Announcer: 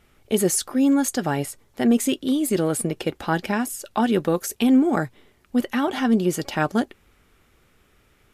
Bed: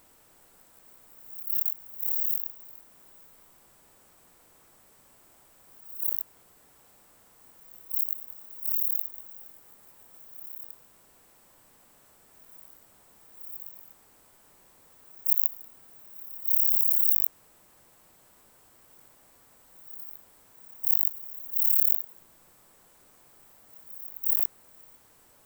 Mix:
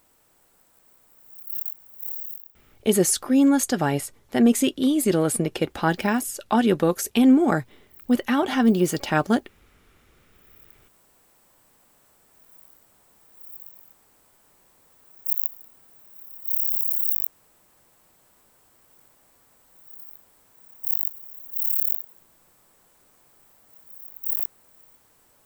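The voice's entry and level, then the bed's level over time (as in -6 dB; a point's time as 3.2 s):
2.55 s, +1.0 dB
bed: 2.06 s -3 dB
2.9 s -21.5 dB
10.22 s -21.5 dB
10.94 s -1 dB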